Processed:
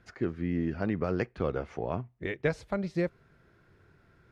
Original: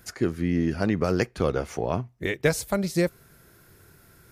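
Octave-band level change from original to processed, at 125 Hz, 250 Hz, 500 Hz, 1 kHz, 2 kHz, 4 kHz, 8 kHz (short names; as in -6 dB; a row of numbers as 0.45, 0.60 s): -6.0 dB, -6.0 dB, -6.0 dB, -6.0 dB, -7.0 dB, -13.5 dB, under -20 dB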